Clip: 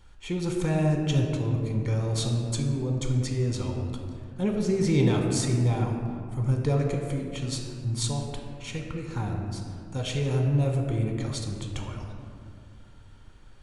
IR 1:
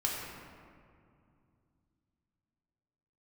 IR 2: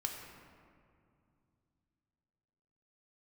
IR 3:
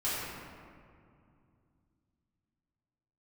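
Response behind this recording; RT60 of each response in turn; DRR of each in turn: 2; 2.4 s, 2.4 s, 2.4 s; -3.5 dB, 1.5 dB, -11.0 dB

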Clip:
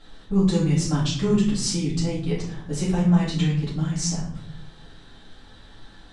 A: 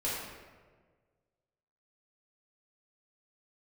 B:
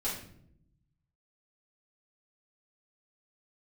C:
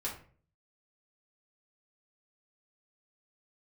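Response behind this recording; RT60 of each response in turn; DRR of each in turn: B; 1.5 s, 0.70 s, 0.45 s; -9.0 dB, -9.5 dB, -5.5 dB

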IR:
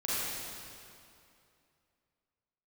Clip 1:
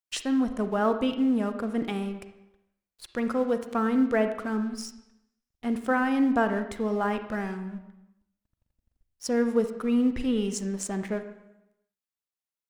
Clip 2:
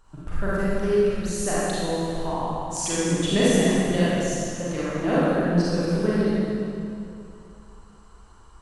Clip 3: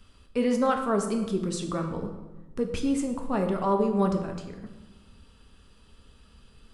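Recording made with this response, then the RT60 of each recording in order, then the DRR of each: 2; 0.90 s, 2.6 s, 1.2 s; 8.5 dB, -10.0 dB, 3.5 dB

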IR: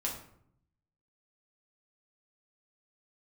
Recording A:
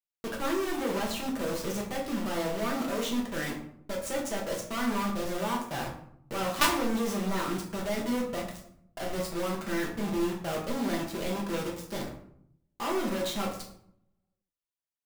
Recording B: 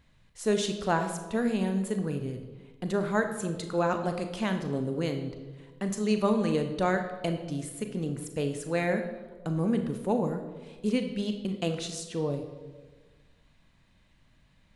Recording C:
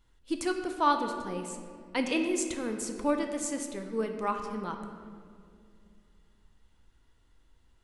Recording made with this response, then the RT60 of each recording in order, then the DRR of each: A; 0.65 s, 1.4 s, 2.3 s; -3.0 dB, 6.0 dB, 4.5 dB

